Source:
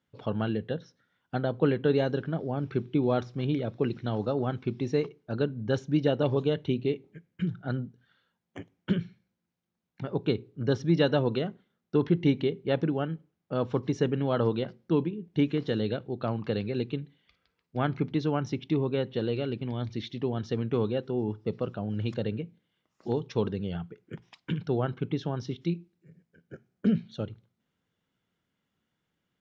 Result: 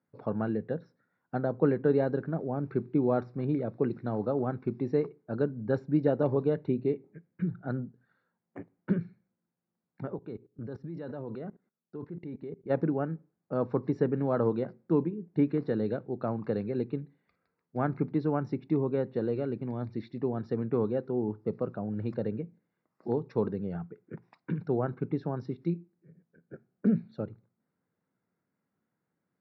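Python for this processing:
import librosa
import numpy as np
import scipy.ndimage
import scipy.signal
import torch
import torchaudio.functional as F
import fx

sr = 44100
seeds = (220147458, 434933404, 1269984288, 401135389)

y = scipy.signal.sosfilt(scipy.signal.butter(2, 130.0, 'highpass', fs=sr, output='sos'), x)
y = fx.level_steps(y, sr, step_db=19, at=(10.14, 12.69), fade=0.02)
y = scipy.signal.lfilter(np.full(14, 1.0 / 14), 1.0, y)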